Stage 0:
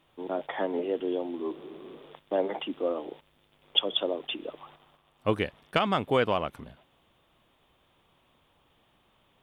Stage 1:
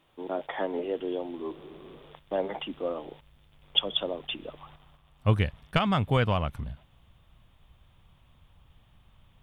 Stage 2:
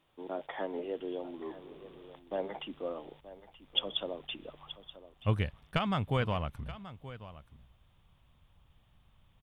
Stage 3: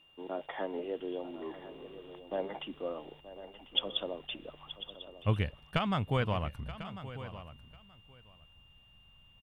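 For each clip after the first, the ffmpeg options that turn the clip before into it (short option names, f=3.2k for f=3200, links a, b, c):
-af "asubboost=boost=10:cutoff=110"
-af "aecho=1:1:928:0.168,volume=-6dB"
-af "aeval=exprs='val(0)+0.000891*sin(2*PI*2800*n/s)':c=same,aecho=1:1:1046:0.188"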